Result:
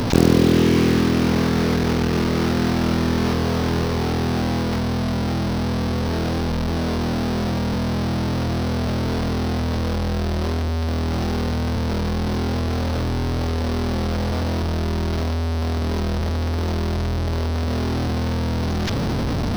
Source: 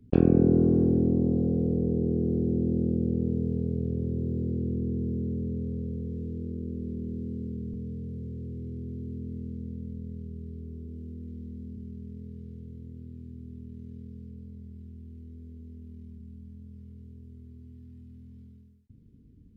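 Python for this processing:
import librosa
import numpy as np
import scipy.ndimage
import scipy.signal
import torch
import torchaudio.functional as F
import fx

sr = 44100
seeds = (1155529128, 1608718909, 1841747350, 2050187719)

y = fx.delta_mod(x, sr, bps=32000, step_db=-22.0)
y = fx.quant_float(y, sr, bits=2)
y = y * 10.0 ** (5.0 / 20.0)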